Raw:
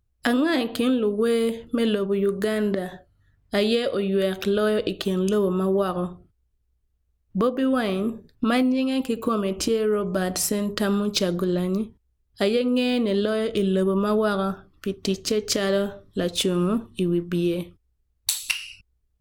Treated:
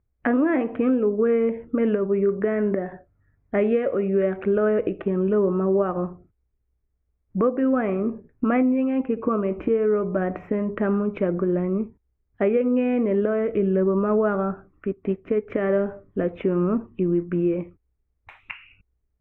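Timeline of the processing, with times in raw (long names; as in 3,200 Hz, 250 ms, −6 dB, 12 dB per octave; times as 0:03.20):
0:14.92–0:15.52: expander for the loud parts, over −41 dBFS
whole clip: elliptic low-pass filter 2,300 Hz, stop band 50 dB; parametric band 370 Hz +4.5 dB 2.3 octaves; level −2 dB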